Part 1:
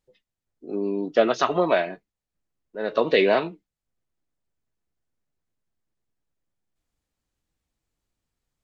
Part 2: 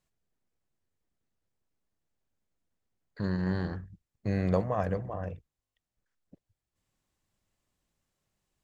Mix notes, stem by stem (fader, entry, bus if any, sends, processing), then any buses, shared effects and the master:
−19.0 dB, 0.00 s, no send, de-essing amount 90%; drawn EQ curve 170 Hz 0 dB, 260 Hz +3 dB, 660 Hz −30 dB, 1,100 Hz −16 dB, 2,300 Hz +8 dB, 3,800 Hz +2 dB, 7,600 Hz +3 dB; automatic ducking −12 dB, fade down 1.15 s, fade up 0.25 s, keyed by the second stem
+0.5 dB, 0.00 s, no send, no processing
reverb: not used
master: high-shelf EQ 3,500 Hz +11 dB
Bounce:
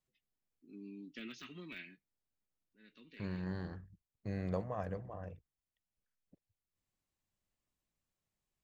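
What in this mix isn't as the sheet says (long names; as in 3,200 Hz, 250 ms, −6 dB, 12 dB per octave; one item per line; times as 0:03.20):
stem 2 +0.5 dB → −10.0 dB
master: missing high-shelf EQ 3,500 Hz +11 dB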